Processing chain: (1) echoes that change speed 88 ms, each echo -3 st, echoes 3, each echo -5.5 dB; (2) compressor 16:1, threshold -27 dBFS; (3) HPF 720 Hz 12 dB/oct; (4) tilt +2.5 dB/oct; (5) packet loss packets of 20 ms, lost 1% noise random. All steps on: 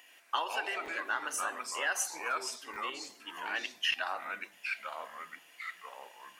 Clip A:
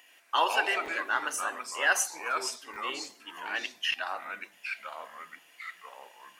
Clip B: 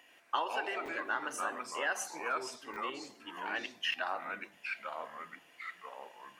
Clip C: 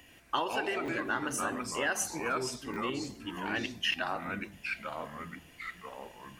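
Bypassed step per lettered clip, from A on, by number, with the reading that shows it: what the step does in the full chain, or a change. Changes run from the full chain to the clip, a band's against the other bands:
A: 2, mean gain reduction 2.0 dB; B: 4, 8 kHz band -7.0 dB; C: 3, 250 Hz band +15.5 dB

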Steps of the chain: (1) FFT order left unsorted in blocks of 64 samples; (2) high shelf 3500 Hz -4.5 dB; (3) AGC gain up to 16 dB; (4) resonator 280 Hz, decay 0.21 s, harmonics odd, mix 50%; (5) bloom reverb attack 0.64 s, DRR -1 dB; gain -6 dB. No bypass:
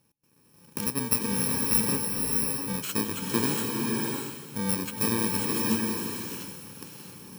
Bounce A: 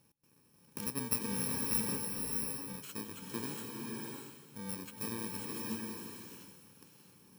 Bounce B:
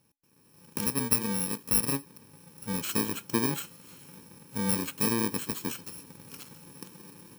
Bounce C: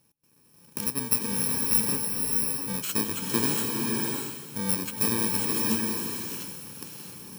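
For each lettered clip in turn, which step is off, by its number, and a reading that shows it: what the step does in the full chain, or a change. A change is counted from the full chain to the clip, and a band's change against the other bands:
3, crest factor change +2.0 dB; 5, momentary loudness spread change +6 LU; 2, 8 kHz band +3.5 dB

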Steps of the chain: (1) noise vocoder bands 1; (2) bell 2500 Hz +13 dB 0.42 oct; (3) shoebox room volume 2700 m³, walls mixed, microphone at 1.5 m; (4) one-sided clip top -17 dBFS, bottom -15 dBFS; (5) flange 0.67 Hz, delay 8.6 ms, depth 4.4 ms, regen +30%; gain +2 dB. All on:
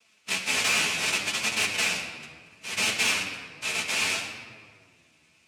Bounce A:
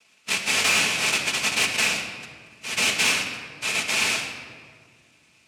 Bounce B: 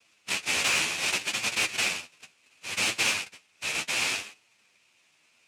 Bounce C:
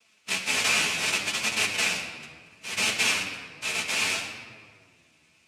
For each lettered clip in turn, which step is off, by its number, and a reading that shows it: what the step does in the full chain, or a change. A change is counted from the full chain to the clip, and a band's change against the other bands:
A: 5, crest factor change -2.5 dB; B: 3, momentary loudness spread change -3 LU; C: 4, distortion -21 dB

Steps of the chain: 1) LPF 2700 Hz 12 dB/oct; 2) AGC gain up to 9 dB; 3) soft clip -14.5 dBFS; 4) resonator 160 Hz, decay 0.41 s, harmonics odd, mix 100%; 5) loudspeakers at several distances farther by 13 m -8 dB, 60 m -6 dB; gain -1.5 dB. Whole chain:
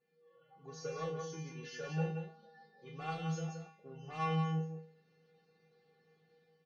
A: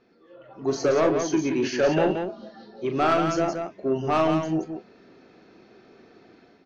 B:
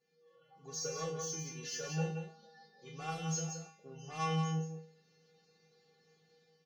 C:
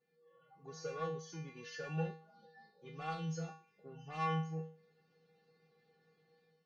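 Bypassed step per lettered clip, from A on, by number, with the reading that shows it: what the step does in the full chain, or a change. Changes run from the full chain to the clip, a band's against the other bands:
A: 4, 125 Hz band -11.0 dB; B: 1, 4 kHz band +6.5 dB; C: 5, echo-to-direct -4.0 dB to none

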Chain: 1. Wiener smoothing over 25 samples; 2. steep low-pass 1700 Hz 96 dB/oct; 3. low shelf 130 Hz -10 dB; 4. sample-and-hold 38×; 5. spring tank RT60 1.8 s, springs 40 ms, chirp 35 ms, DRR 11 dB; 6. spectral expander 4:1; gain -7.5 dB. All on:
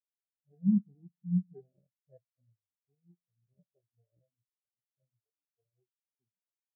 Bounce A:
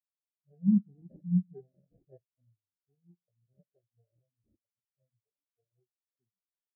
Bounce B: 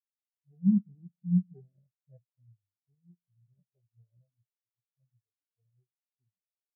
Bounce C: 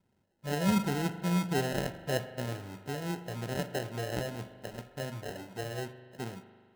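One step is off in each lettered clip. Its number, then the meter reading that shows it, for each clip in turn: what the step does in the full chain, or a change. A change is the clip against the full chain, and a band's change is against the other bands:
2, loudness change +2.0 LU; 3, momentary loudness spread change -2 LU; 6, momentary loudness spread change -5 LU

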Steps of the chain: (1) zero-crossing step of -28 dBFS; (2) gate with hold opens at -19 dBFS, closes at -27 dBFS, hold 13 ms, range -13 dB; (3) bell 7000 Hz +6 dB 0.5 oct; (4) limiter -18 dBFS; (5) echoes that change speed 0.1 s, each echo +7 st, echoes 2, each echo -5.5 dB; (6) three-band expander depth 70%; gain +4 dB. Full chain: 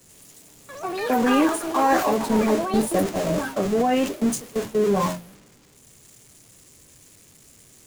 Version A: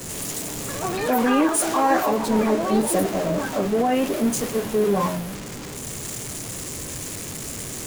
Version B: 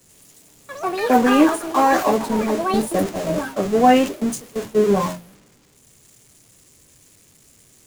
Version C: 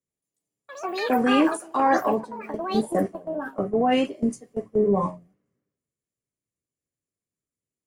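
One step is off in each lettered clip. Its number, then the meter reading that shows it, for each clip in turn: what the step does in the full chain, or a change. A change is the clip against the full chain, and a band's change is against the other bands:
2, momentary loudness spread change +3 LU; 4, crest factor change +1.5 dB; 1, distortion -9 dB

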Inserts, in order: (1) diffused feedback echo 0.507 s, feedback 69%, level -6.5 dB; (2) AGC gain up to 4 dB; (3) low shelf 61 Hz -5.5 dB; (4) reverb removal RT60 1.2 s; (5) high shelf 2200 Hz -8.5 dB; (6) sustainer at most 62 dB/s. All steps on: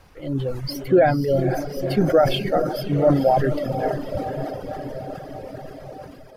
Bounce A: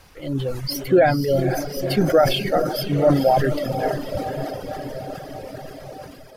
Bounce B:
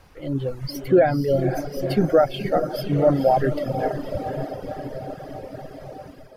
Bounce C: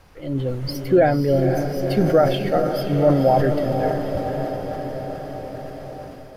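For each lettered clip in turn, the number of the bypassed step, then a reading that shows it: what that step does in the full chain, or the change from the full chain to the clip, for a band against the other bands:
5, 4 kHz band +4.0 dB; 6, 4 kHz band -3.5 dB; 4, 4 kHz band -3.0 dB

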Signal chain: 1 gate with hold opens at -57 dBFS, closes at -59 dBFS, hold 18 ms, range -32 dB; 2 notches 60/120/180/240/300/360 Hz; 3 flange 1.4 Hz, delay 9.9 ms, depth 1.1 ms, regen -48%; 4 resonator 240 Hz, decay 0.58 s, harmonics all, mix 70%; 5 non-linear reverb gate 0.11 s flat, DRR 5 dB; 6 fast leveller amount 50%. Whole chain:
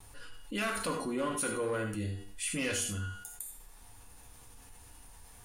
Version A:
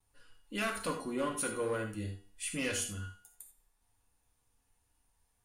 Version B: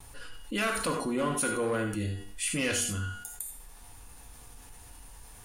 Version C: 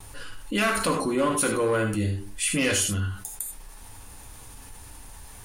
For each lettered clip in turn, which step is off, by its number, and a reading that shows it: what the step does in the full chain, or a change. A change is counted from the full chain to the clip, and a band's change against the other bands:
6, momentary loudness spread change -4 LU; 3, loudness change +4.0 LU; 4, loudness change +9.5 LU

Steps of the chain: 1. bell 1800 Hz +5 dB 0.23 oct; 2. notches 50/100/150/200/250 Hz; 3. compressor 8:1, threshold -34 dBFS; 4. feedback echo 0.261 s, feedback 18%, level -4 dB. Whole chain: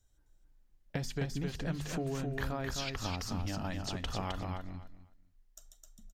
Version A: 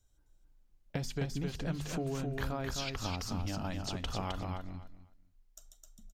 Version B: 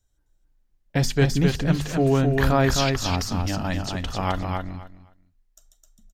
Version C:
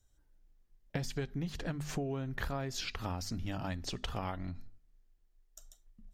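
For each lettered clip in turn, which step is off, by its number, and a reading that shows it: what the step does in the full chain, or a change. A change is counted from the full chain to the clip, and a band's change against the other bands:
1, 2 kHz band -1.5 dB; 3, mean gain reduction 11.0 dB; 4, momentary loudness spread change +2 LU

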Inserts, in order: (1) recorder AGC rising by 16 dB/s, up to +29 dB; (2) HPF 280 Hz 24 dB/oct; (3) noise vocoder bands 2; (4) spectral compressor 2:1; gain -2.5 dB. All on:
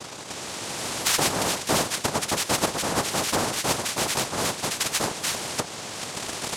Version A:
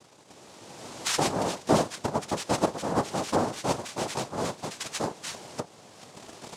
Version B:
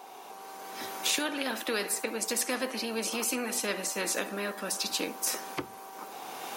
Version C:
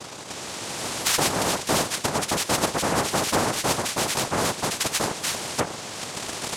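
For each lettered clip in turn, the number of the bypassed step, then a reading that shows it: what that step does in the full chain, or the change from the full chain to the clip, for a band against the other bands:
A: 4, 8 kHz band -9.0 dB; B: 3, 1 kHz band -3.5 dB; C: 2, 4 kHz band -2.0 dB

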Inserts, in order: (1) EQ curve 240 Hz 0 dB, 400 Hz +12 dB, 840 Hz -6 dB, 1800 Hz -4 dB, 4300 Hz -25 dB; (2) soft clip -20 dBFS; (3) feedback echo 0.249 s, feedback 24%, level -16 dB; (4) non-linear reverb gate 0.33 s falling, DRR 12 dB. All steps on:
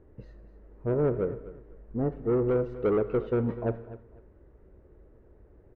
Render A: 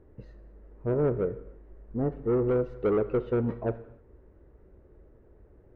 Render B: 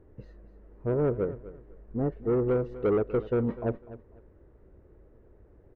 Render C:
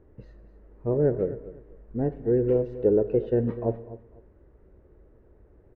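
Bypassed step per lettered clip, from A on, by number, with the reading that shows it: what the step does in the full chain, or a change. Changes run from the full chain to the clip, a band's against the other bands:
3, echo-to-direct -10.5 dB to -12.0 dB; 4, echo-to-direct -10.5 dB to -16.0 dB; 2, distortion -14 dB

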